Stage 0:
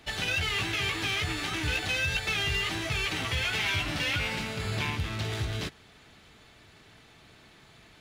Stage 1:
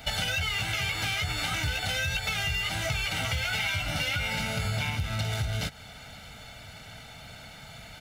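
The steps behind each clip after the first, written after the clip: high shelf 12000 Hz +9.5 dB; comb 1.4 ms, depth 81%; compressor 6:1, threshold -34 dBFS, peak gain reduction 12 dB; gain +7 dB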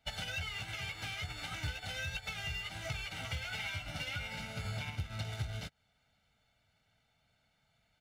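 high shelf 9700 Hz -6.5 dB; soft clip -19.5 dBFS, distortion -25 dB; upward expander 2.5:1, over -43 dBFS; gain -4.5 dB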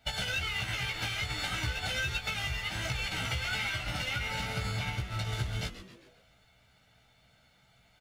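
compressor, threshold -40 dBFS, peak gain reduction 8 dB; doubler 16 ms -4 dB; on a send: frequency-shifting echo 0.133 s, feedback 47%, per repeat -150 Hz, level -12.5 dB; on the sum: gain +8.5 dB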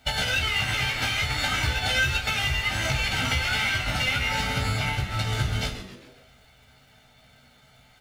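crackle 220/s -60 dBFS; on a send at -4 dB: reverb RT60 0.65 s, pre-delay 4 ms; on the sum: gain +7 dB

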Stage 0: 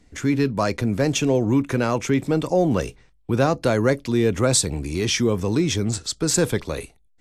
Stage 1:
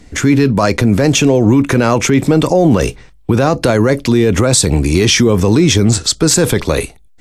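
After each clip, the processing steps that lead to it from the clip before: maximiser +16 dB; gain -1 dB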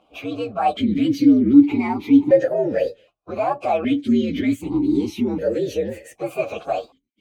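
inharmonic rescaling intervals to 123%; vowel sequencer 1.3 Hz; gain +5.5 dB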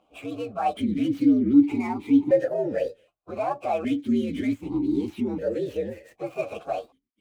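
median filter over 9 samples; gain -5.5 dB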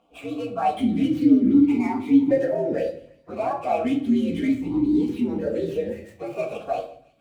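thin delay 0.167 s, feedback 66%, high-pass 1700 Hz, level -21 dB; shoebox room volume 570 m³, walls furnished, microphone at 1.7 m

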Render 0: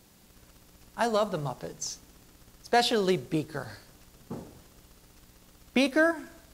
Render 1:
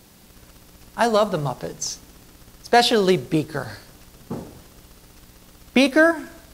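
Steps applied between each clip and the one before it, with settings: bell 7100 Hz -2.5 dB 0.2 oct; gain +8 dB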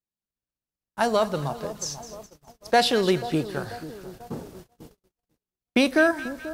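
split-band echo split 1100 Hz, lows 0.488 s, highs 0.209 s, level -14 dB; gate -39 dBFS, range -44 dB; gain -4 dB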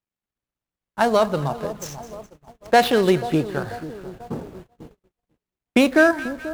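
median filter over 9 samples; gain +4.5 dB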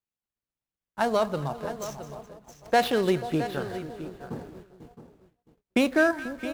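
echo 0.666 s -12.5 dB; gain -6.5 dB

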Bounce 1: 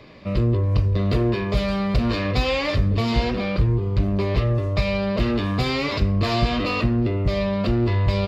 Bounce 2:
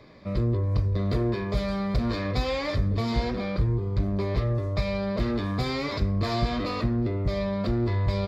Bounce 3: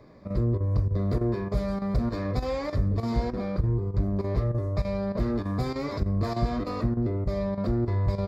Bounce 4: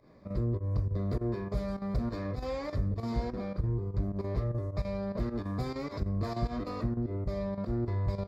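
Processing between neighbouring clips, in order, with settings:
bell 2800 Hz -14.5 dB 0.23 oct; gain -5 dB
chopper 3.3 Hz, depth 65%, duty 90%; bell 3100 Hz -13 dB 1.4 oct
pump 102 bpm, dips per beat 1, -13 dB, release 94 ms; gain -5.5 dB

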